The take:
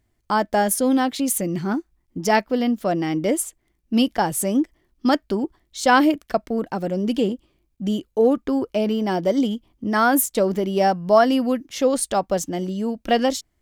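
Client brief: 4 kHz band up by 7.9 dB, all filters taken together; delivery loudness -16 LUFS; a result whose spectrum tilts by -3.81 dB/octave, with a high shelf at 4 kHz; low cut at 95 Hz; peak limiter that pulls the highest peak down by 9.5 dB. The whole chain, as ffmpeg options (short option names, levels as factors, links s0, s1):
-af "highpass=95,highshelf=f=4000:g=8,equalizer=f=4000:t=o:g=6,volume=1.88,alimiter=limit=0.631:level=0:latency=1"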